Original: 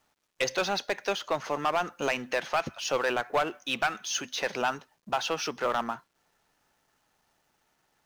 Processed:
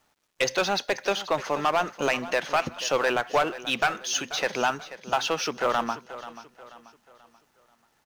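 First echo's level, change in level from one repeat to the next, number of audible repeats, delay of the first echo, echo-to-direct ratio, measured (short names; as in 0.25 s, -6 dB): -15.0 dB, -8.0 dB, 3, 0.485 s, -14.0 dB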